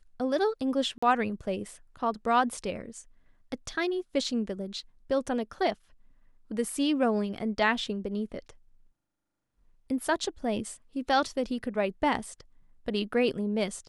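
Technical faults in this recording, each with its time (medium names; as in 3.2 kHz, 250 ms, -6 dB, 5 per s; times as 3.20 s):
0.98–1.02 s: dropout 45 ms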